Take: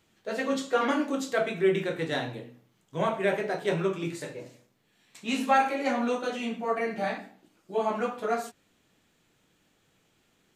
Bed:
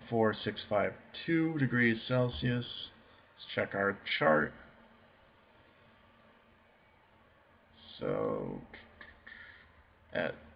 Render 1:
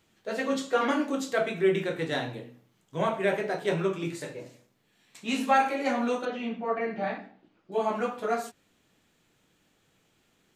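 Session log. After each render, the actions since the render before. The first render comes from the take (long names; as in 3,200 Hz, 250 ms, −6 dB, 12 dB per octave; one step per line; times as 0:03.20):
0:06.25–0:07.72: high-frequency loss of the air 220 metres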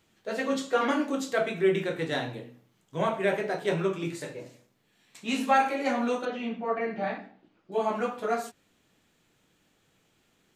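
no processing that can be heard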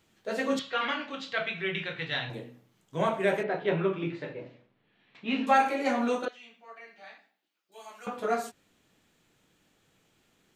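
0:00.59–0:02.30: drawn EQ curve 120 Hz 0 dB, 310 Hz −14 dB, 3,000 Hz +6 dB, 4,300 Hz +1 dB, 10,000 Hz −28 dB
0:03.43–0:05.47: low-pass filter 3,400 Hz 24 dB per octave
0:06.28–0:08.07: first difference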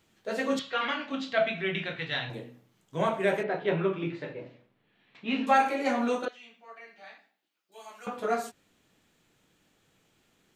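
0:01.11–0:01.96: hollow resonant body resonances 250/660 Hz, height 11 dB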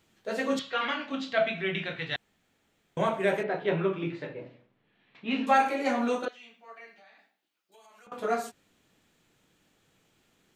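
0:02.16–0:02.97: fill with room tone
0:04.27–0:05.31: high-frequency loss of the air 78 metres
0:06.92–0:08.12: downward compressor, threshold −53 dBFS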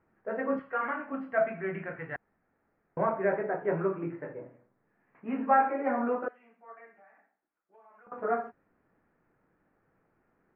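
inverse Chebyshev low-pass filter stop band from 3,400 Hz, stop band 40 dB
parametric band 120 Hz −4 dB 2.8 octaves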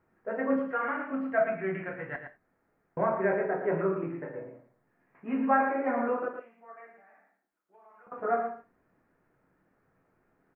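single-tap delay 113 ms −8 dB
reverb whose tail is shaped and stops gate 120 ms falling, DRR 8 dB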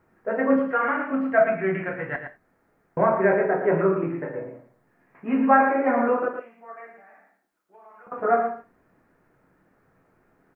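level +7.5 dB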